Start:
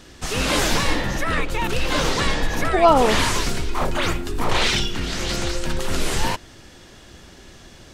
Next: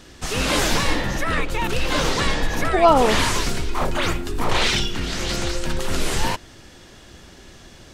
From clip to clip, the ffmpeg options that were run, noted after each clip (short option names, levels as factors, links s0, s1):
-af anull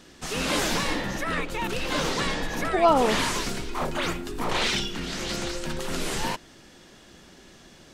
-af "lowshelf=f=130:t=q:w=1.5:g=-6,volume=0.562"